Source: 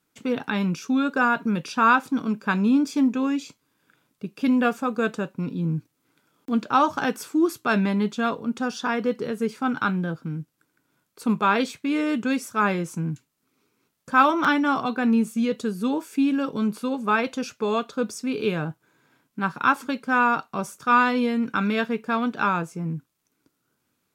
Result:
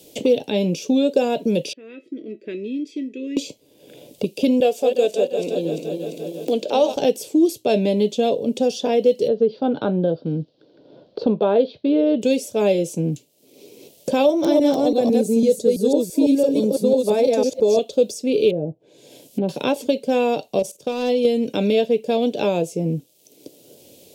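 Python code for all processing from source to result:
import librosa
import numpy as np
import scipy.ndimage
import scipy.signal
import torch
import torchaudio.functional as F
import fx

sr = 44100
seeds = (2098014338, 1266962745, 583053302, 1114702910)

y = fx.chain(x, sr, fx.double_bandpass(hz=820.0, octaves=2.5),
    fx.comb_fb(f0_hz=650.0, decay_s=0.16, harmonics='all', damping=0.0, mix_pct=80), at=(1.73, 3.37))
y = fx.chain(y, sr, fx.reverse_delay_fb(ms=172, feedback_pct=63, wet_db=-8.5),
    fx.highpass(hz=370.0, slope=12), at=(4.6, 6.96))
y = fx.chain(y, sr, fx.steep_lowpass(hz=4600.0, slope=48),
    fx.env_lowpass_down(base_hz=2400.0, full_db=-19.0),
    fx.high_shelf_res(hz=1800.0, db=-8.5, q=3.0), at=(9.28, 12.22))
y = fx.chain(y, sr, fx.reverse_delay(ms=167, wet_db=-1),
    fx.peak_eq(hz=2900.0, db=-14.0, octaves=0.64), at=(14.26, 17.79))
y = fx.chain(y, sr, fx.env_lowpass_down(base_hz=500.0, full_db=-27.5),
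    fx.high_shelf(hz=5200.0, db=8.0), at=(18.5, 19.49))
y = fx.chain(y, sr, fx.level_steps(step_db=14),
    fx.clip_hard(threshold_db=-22.0), at=(20.59, 21.25))
y = fx.curve_eq(y, sr, hz=(230.0, 570.0, 1300.0, 3000.0), db=(0, 15, -25, 7))
y = fx.band_squash(y, sr, depth_pct=70)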